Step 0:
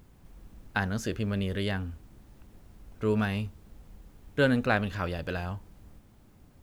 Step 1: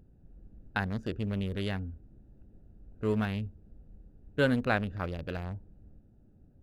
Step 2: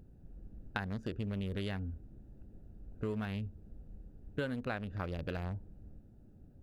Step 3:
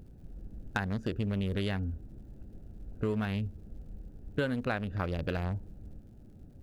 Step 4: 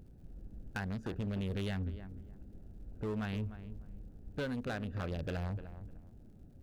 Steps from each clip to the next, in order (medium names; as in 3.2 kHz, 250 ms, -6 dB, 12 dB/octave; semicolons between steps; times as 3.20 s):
local Wiener filter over 41 samples; trim -2 dB
compression 6:1, threshold -36 dBFS, peak gain reduction 14.5 dB; trim +2 dB
hard clipper -24 dBFS, distortion -30 dB; crackle 110 per s -65 dBFS; trim +5.5 dB
filtered feedback delay 301 ms, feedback 23%, low-pass 1.6 kHz, level -13 dB; hard clipper -28 dBFS, distortion -13 dB; trim -4 dB